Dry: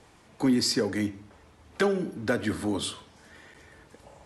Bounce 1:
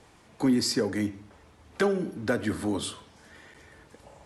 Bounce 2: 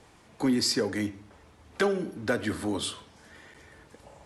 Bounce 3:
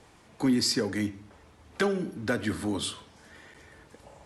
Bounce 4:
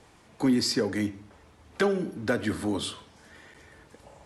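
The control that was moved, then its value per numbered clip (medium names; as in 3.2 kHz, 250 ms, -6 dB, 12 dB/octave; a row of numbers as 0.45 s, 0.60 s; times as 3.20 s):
dynamic bell, frequency: 3.4 kHz, 170 Hz, 540 Hz, 9.1 kHz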